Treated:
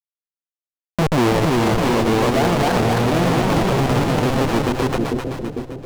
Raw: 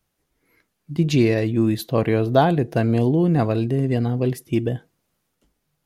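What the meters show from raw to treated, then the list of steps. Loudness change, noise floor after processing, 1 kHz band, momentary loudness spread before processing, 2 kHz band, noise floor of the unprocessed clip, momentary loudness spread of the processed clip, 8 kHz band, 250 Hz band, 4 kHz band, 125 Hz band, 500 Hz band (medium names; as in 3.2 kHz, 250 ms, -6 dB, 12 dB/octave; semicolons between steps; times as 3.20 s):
+2.0 dB, under -85 dBFS, +7.5 dB, 6 LU, +8.5 dB, -75 dBFS, 7 LU, no reading, +1.5 dB, +9.0 dB, +0.5 dB, +3.0 dB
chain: level-controlled noise filter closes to 2.1 kHz, open at -16.5 dBFS; in parallel at +1.5 dB: level held to a coarse grid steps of 21 dB; on the sum: Schmitt trigger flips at -15 dBFS; overdrive pedal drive 21 dB, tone 4.7 kHz, clips at -10 dBFS; ever faster or slower copies 392 ms, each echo +1 st, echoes 2; on a send: two-band feedback delay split 580 Hz, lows 448 ms, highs 259 ms, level -8.5 dB; on the sum: loudness maximiser +15 dB; trim -8.5 dB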